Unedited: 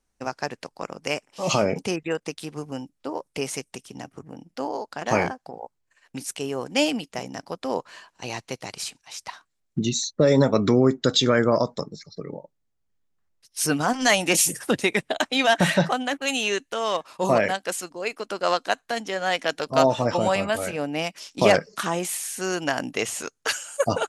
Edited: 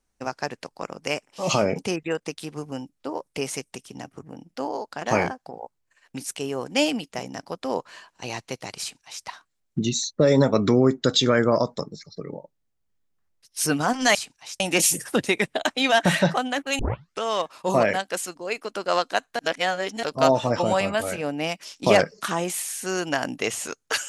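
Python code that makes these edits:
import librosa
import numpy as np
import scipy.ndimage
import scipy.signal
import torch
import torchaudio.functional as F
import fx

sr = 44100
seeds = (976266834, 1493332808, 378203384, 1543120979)

y = fx.edit(x, sr, fx.duplicate(start_s=8.8, length_s=0.45, to_s=14.15),
    fx.tape_start(start_s=16.34, length_s=0.43),
    fx.reverse_span(start_s=18.94, length_s=0.64), tone=tone)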